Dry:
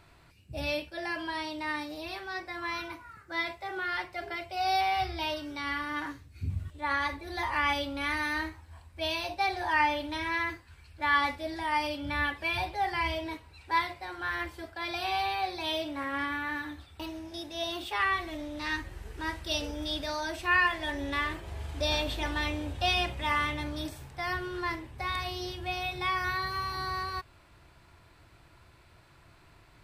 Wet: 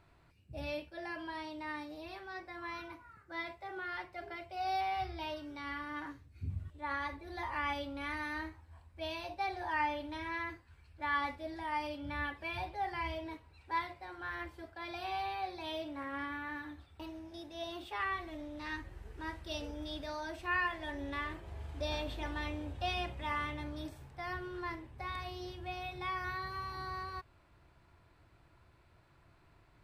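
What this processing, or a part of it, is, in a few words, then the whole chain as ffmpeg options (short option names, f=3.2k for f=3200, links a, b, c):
behind a face mask: -af "highshelf=f=2.4k:g=-8,volume=-6dB"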